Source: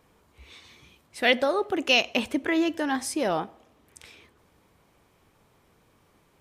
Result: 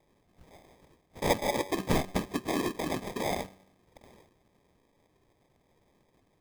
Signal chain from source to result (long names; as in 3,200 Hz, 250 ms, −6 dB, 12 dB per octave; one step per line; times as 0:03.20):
random phases in short frames
tuned comb filter 190 Hz, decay 0.76 s, harmonics all, mix 50%
decimation without filtering 31×